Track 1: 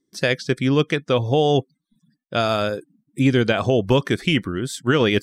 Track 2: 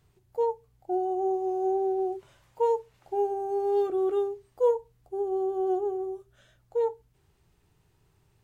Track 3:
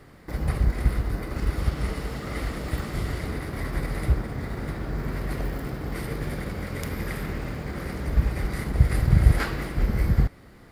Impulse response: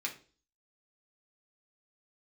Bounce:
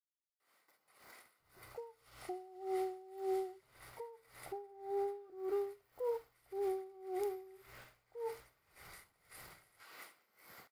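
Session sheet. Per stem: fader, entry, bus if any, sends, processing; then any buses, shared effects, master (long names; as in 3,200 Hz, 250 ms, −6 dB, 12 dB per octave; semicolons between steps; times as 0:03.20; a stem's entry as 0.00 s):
muted
+2.0 dB, 1.40 s, bus A, no send, low-pass filter 2,200 Hz; downward compressor 6 to 1, threshold −32 dBFS, peak gain reduction 13 dB
−15.0 dB, 0.40 s, bus A, no send, high-pass filter 880 Hz 12 dB per octave; notch filter 1,700 Hz, Q 8.3
bus A: 0.0 dB, high-shelf EQ 7,700 Hz +9.5 dB; brickwall limiter −29 dBFS, peak gain reduction 7.5 dB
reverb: not used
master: tremolo with a sine in dB 1.8 Hz, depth 22 dB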